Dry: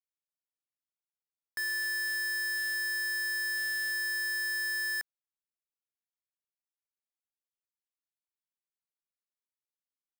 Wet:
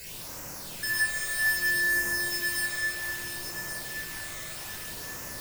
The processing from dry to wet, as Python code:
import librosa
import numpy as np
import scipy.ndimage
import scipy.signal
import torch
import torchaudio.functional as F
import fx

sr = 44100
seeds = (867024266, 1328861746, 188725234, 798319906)

p1 = fx.bin_compress(x, sr, power=0.4)
p2 = fx.low_shelf(p1, sr, hz=61.0, db=11.0)
p3 = fx.stretch_vocoder(p2, sr, factor=0.53)
p4 = fx.quant_dither(p3, sr, seeds[0], bits=6, dither='triangular')
p5 = p3 + F.gain(torch.from_numpy(p4), -7.5).numpy()
p6 = fx.phaser_stages(p5, sr, stages=12, low_hz=270.0, high_hz=3800.0, hz=0.63, feedback_pct=25)
p7 = p6 + fx.echo_feedback(p6, sr, ms=1126, feedback_pct=40, wet_db=-8.5, dry=0)
y = fx.room_shoebox(p7, sr, seeds[1], volume_m3=2000.0, walls='mixed', distance_m=5.1)